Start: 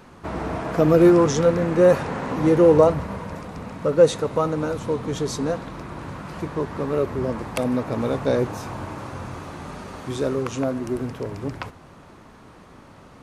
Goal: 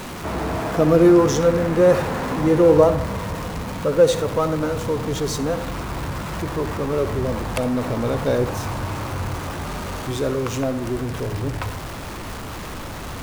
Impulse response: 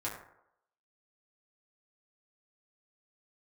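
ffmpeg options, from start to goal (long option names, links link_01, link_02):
-filter_complex "[0:a]aeval=exprs='val(0)+0.5*0.0376*sgn(val(0))':channel_layout=same,asplit=2[link_01][link_02];[1:a]atrim=start_sample=2205,adelay=66[link_03];[link_02][link_03]afir=irnorm=-1:irlink=0,volume=-15dB[link_04];[link_01][link_04]amix=inputs=2:normalize=0,asubboost=boost=2:cutoff=110"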